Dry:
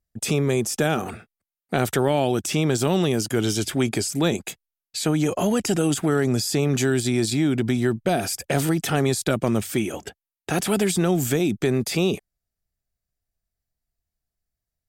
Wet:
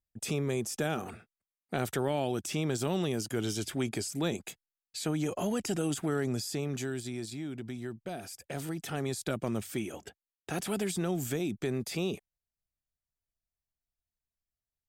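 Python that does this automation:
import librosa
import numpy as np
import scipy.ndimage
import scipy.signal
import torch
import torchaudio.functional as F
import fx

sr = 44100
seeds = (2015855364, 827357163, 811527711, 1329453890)

y = fx.gain(x, sr, db=fx.line((6.24, -10.0), (7.38, -17.5), (8.29, -17.5), (9.3, -11.0)))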